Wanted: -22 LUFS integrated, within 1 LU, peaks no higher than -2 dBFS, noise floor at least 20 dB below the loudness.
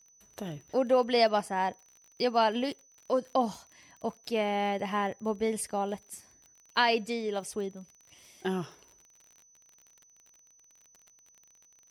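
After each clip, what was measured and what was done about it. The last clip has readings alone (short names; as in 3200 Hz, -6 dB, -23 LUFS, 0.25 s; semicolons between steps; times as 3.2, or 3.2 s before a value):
ticks 37/s; steady tone 6000 Hz; tone level -59 dBFS; loudness -30.5 LUFS; peak -12.0 dBFS; loudness target -22.0 LUFS
-> de-click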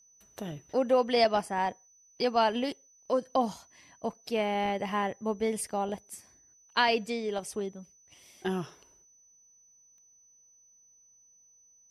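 ticks 0.084/s; steady tone 6000 Hz; tone level -59 dBFS
-> notch 6000 Hz, Q 30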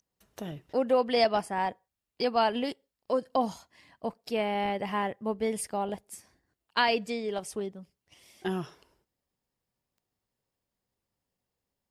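steady tone none; loudness -30.5 LUFS; peak -12.0 dBFS; loudness target -22.0 LUFS
-> gain +8.5 dB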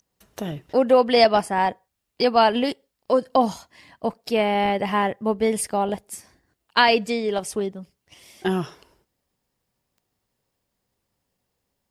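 loudness -22.0 LUFS; peak -3.5 dBFS; noise floor -79 dBFS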